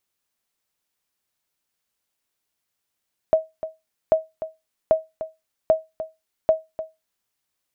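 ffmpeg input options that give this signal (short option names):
-f lavfi -i "aevalsrc='0.398*(sin(2*PI*638*mod(t,0.79))*exp(-6.91*mod(t,0.79)/0.21)+0.224*sin(2*PI*638*max(mod(t,0.79)-0.3,0))*exp(-6.91*max(mod(t,0.79)-0.3,0)/0.21))':d=3.95:s=44100"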